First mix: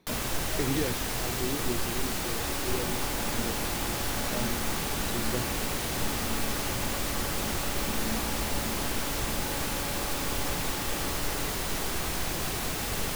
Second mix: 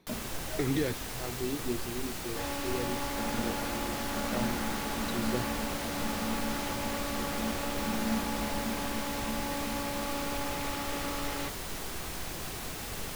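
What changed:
first sound −7.0 dB
second sound +4.5 dB

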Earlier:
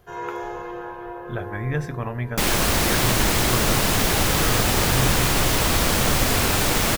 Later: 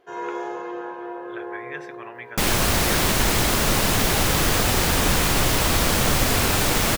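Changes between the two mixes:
speech: add resonant band-pass 2,300 Hz, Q 1.1
first sound: add low shelf with overshoot 170 Hz −12.5 dB, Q 1.5

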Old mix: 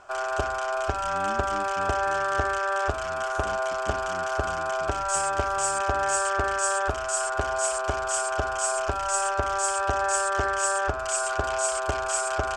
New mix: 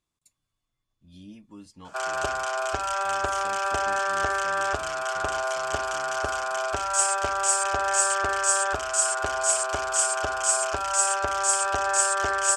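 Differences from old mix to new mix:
background: entry +1.85 s
master: add spectral tilt +2 dB per octave

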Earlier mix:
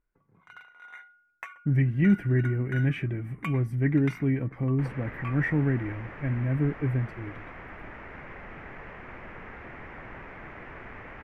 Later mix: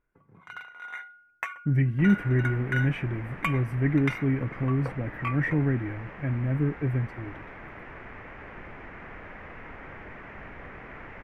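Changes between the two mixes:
first sound +7.5 dB
second sound: entry −2.80 s

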